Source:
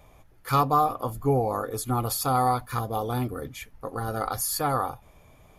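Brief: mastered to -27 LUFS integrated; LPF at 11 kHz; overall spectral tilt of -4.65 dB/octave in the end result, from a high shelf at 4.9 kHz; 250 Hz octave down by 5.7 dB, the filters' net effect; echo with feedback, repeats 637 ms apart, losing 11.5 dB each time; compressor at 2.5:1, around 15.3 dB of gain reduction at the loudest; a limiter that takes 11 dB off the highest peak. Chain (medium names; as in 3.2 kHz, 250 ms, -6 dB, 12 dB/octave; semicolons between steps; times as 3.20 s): low-pass 11 kHz; peaking EQ 250 Hz -7.5 dB; treble shelf 4.9 kHz -6 dB; compression 2.5:1, threshold -42 dBFS; peak limiter -36 dBFS; feedback delay 637 ms, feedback 27%, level -11.5 dB; trim +18.5 dB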